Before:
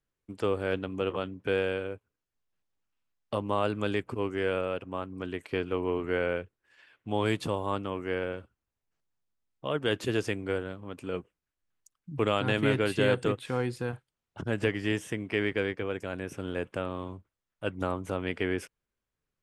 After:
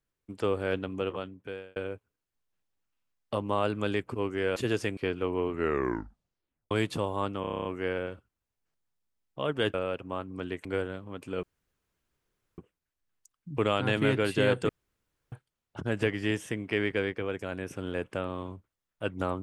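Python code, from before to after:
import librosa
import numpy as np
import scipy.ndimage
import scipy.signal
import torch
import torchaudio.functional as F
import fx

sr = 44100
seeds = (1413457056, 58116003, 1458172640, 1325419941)

y = fx.edit(x, sr, fx.fade_out_span(start_s=0.91, length_s=0.85),
    fx.swap(start_s=4.56, length_s=0.91, other_s=10.0, other_length_s=0.41),
    fx.tape_stop(start_s=6.03, length_s=1.18),
    fx.stutter(start_s=7.91, slice_s=0.03, count=9),
    fx.insert_room_tone(at_s=11.19, length_s=1.15),
    fx.room_tone_fill(start_s=13.3, length_s=0.63), tone=tone)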